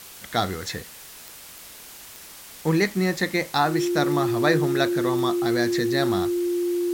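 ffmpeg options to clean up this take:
ffmpeg -i in.wav -af "adeclick=threshold=4,bandreject=frequency=350:width=30,afftdn=noise_reduction=26:noise_floor=-43" out.wav

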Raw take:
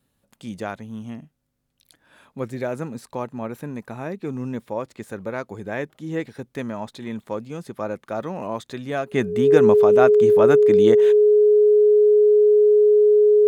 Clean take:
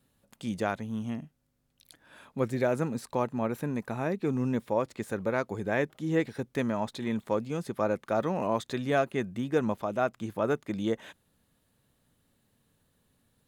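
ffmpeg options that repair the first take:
ffmpeg -i in.wav -af "bandreject=frequency=420:width=30,asetnsamples=nb_out_samples=441:pad=0,asendcmd='9.12 volume volume -9dB',volume=0dB" out.wav

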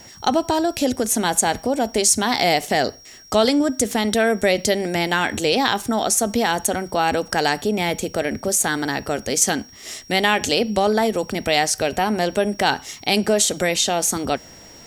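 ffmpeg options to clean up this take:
ffmpeg -i in.wav -af "bandreject=frequency=5600:width=30" out.wav

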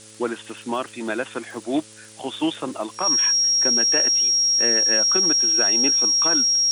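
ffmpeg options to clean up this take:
ffmpeg -i in.wav -af "adeclick=threshold=4,bandreject=frequency=109:width_type=h:width=4,bandreject=frequency=218:width_type=h:width=4,bandreject=frequency=327:width_type=h:width=4,bandreject=frequency=436:width_type=h:width=4,bandreject=frequency=545:width_type=h:width=4,bandreject=frequency=5600:width=30,afftdn=noise_reduction=25:noise_floor=-43" out.wav

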